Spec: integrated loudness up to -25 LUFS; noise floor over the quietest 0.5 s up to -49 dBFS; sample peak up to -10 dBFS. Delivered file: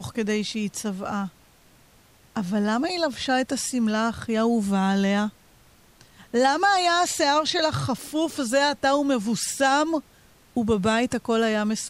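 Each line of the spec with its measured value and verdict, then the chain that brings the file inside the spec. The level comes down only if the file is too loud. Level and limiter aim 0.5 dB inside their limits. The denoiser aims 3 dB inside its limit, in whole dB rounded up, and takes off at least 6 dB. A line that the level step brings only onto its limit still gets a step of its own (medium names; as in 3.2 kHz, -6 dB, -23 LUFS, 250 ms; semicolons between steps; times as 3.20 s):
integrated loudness -23.5 LUFS: fail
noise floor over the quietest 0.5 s -56 dBFS: pass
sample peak -9.0 dBFS: fail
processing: trim -2 dB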